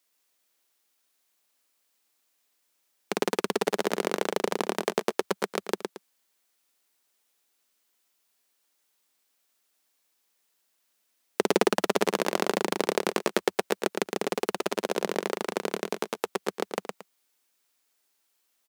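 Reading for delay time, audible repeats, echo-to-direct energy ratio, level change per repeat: 0.113 s, 2, -4.5 dB, -11.0 dB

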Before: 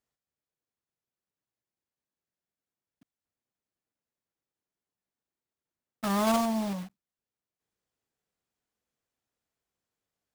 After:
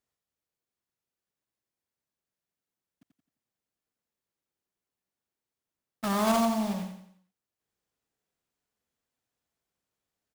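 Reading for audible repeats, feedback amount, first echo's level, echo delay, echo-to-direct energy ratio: 4, 42%, -7.0 dB, 87 ms, -6.0 dB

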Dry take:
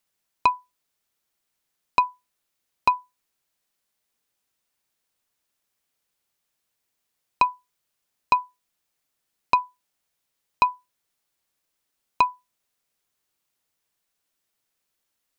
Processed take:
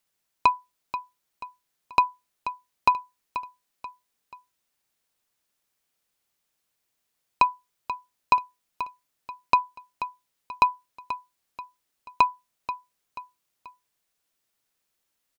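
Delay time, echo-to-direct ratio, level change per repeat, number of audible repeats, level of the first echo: 0.484 s, -11.0 dB, -7.5 dB, 3, -12.0 dB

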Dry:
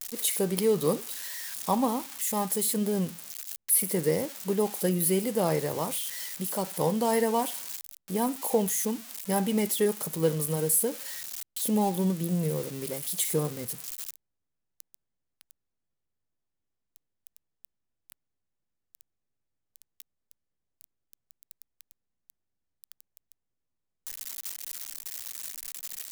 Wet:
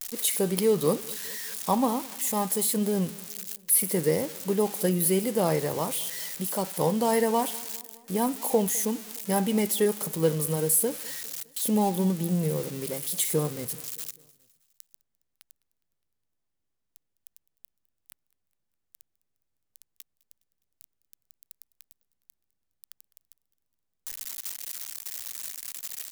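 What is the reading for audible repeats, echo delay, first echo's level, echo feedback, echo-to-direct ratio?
3, 0.206 s, -23.0 dB, 57%, -21.5 dB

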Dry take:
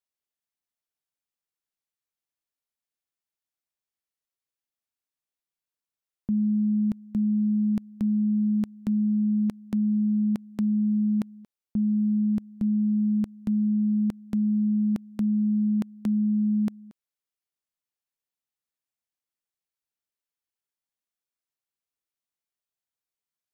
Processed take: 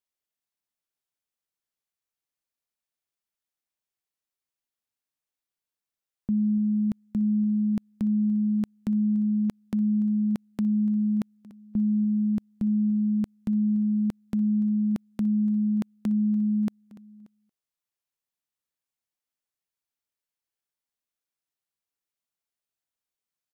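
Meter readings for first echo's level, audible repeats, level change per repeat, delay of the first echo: -19.0 dB, 2, -6.0 dB, 0.291 s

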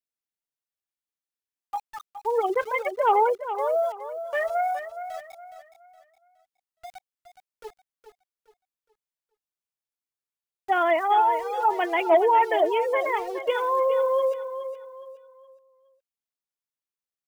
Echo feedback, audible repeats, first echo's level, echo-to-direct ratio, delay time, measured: 34%, 3, -10.5 dB, -10.0 dB, 0.417 s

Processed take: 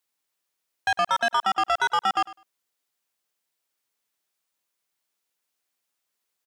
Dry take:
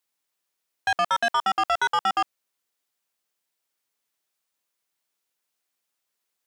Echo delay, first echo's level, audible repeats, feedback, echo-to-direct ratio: 0.102 s, -18.0 dB, 2, 15%, -18.0 dB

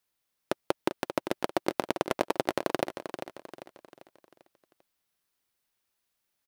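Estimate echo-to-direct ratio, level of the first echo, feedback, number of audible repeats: -8.5 dB, -9.5 dB, 43%, 4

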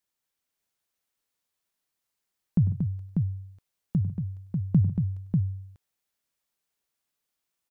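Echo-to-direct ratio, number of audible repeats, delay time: -1.5 dB, 4, 99 ms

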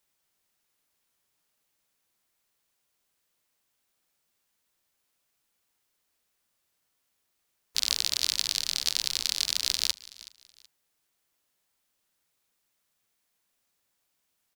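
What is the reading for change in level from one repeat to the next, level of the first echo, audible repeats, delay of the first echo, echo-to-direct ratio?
-10.5 dB, -20.0 dB, 2, 0.375 s, -19.5 dB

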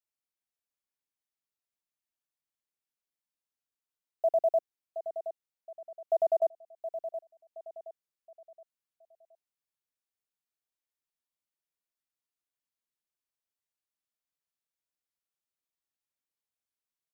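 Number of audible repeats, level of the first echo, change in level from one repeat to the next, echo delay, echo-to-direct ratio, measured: 3, -11.0 dB, -8.5 dB, 0.721 s, -10.5 dB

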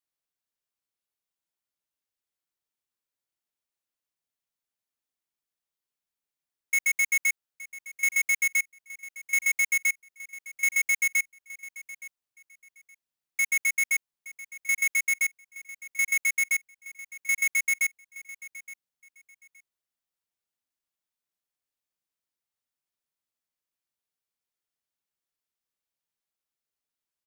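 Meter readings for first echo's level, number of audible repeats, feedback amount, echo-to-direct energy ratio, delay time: -17.5 dB, 2, 22%, -17.5 dB, 0.869 s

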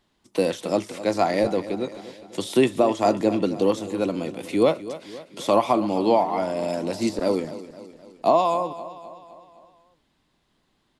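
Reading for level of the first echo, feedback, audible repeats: -15.0 dB, 54%, 4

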